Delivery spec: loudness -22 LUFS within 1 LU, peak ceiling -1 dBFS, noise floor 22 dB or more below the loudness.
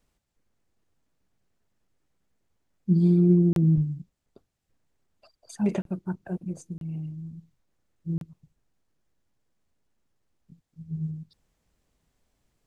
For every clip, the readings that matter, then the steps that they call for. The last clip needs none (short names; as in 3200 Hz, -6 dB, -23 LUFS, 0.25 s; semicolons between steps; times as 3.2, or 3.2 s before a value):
dropouts 4; longest dropout 32 ms; loudness -25.5 LUFS; peak -10.0 dBFS; loudness target -22.0 LUFS
-> interpolate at 3.53/5.82/6.78/8.18, 32 ms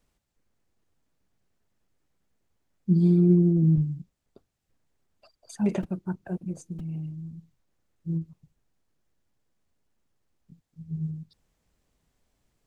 dropouts 0; loudness -25.5 LUFS; peak -10.0 dBFS; loudness target -22.0 LUFS
-> gain +3.5 dB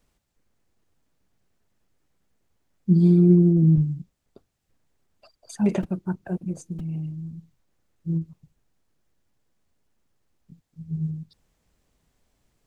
loudness -22.0 LUFS; peak -6.5 dBFS; noise floor -77 dBFS